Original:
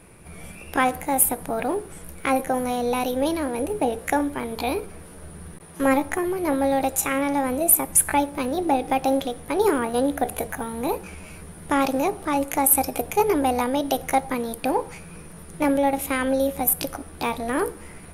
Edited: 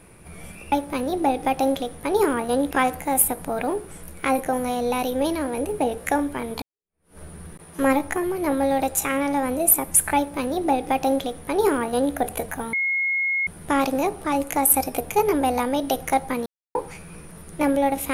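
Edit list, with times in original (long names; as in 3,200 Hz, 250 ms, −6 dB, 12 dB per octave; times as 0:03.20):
0:04.63–0:05.19: fade in exponential
0:08.17–0:10.16: duplicate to 0:00.72
0:10.74–0:11.48: beep over 2,160 Hz −20 dBFS
0:14.47–0:14.76: silence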